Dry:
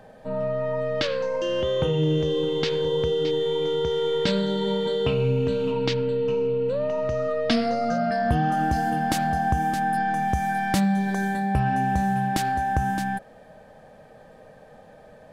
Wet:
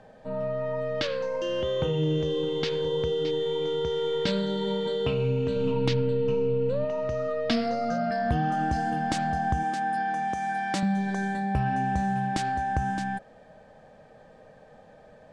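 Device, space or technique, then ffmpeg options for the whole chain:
synthesiser wavefolder: -filter_complex "[0:a]lowpass=11k,asettb=1/sr,asplit=3[a][b][c];[a]atrim=end=5.564[d];[b]atrim=start=5.56:end=6.85,asetpts=PTS-STARTPTS,afade=t=in:d=0.004:c=qsin,afade=t=out:st=1.286:d=0.004:c=qsin,lowshelf=f=200:g=9.5[e];[c]atrim=start=6.846[f];[d][e]acrossfade=d=0.004:c1=hsin:c2=qsin[g];[g][f]acrossfade=d=0.004:c1=qsin:c2=hsin,aeval=exprs='0.282*(abs(mod(val(0)/0.282+3,4)-2)-1)':c=same,lowpass=f=8.8k:w=0.5412,lowpass=f=8.8k:w=1.3066,asettb=1/sr,asplit=3[h][i][j];[h]atrim=end=9.634[k];[i]atrim=start=9.63:end=10.83,asetpts=PTS-STARTPTS,afade=t=in:d=0.004:c=qsin,afade=t=out:st=1.196:d=0.004:c=qsin,highpass=240[l];[j]atrim=start=10.826[m];[k][l]acrossfade=d=0.004:c1=hsin:c2=qsin[n];[n][m]acrossfade=d=0.004:c1=qsin:c2=hsin,volume=-3.5dB"

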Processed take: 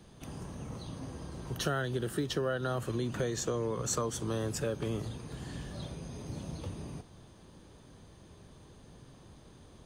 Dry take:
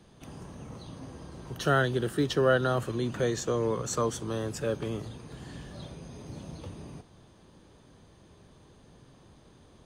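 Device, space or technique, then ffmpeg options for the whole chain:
ASMR close-microphone chain: -af "lowshelf=f=140:g=3.5,acompressor=threshold=-29dB:ratio=6,highshelf=f=6.8k:g=5"

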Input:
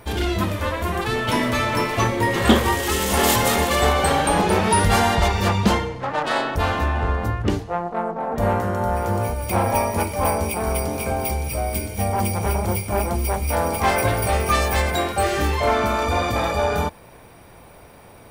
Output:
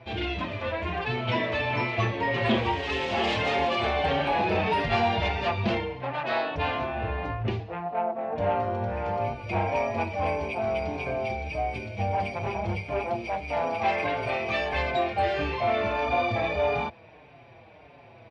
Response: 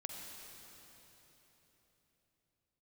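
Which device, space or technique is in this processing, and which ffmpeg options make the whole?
barber-pole flanger into a guitar amplifier: -filter_complex "[0:a]asplit=2[a][b];[b]adelay=5.5,afreqshift=-1.6[c];[a][c]amix=inputs=2:normalize=1,asoftclip=type=tanh:threshold=-13.5dB,highpass=84,equalizer=f=120:t=q:w=4:g=6,equalizer=f=190:t=q:w=4:g=-4,equalizer=f=680:t=q:w=4:g=6,equalizer=f=1.3k:t=q:w=4:g=-5,equalizer=f=2.5k:t=q:w=4:g=8,lowpass=f=4.2k:w=0.5412,lowpass=f=4.2k:w=1.3066,asettb=1/sr,asplit=3[d][e][f];[d]atrim=end=12.994[g];[e]atrim=start=12.99:end=14.74,asetpts=PTS-STARTPTS,afade=t=in:d=0.004:c=qsin,afade=t=out:st=1.746:d=0.004:c=qsin,highpass=f=170:p=1[h];[f]atrim=start=14.736[i];[g][h]acrossfade=d=0.004:c1=hsin:c2=qsin[j];[j][i]acrossfade=d=0.004:c1=qsin:c2=hsin,volume=-3.5dB"

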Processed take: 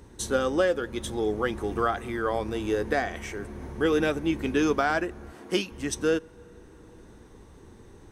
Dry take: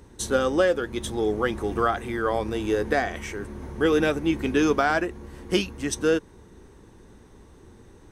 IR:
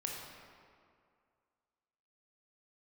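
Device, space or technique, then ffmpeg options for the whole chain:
ducked reverb: -filter_complex "[0:a]asplit=3[a][b][c];[1:a]atrim=start_sample=2205[d];[b][d]afir=irnorm=-1:irlink=0[e];[c]apad=whole_len=357750[f];[e][f]sidechaincompress=threshold=-38dB:ratio=8:attack=16:release=585,volume=-6.5dB[g];[a][g]amix=inputs=2:normalize=0,asettb=1/sr,asplit=3[h][i][j];[h]atrim=end=5.324[k];[i]atrim=start=5.32:end=5.72,asetpts=PTS-STARTPTS,afade=t=in:d=0.004:c=qsin,afade=t=out:st=0.396:d=0.004:c=qsin,highpass=190[l];[j]atrim=start=5.716[m];[k][l]acrossfade=d=0.004:c1=hsin:c2=qsin[n];[n][m]acrossfade=d=0.004:c1=qsin:c2=hsin,volume=-3dB"

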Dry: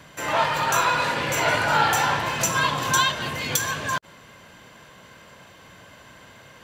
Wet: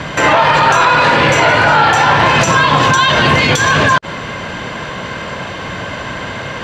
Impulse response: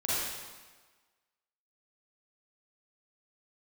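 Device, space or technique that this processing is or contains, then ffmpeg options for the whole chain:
loud club master: -af "acompressor=threshold=-25dB:ratio=3,asoftclip=type=hard:threshold=-17dB,alimiter=level_in=25dB:limit=-1dB:release=50:level=0:latency=1,lowpass=6.3k,highshelf=f=5.1k:g=-8"

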